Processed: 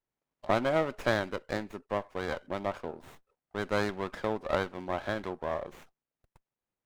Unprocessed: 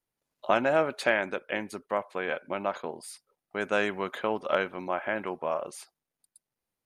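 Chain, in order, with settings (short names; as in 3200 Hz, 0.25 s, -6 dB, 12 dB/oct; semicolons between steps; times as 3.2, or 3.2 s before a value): downsampling 22050 Hz; running maximum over 9 samples; gain -3 dB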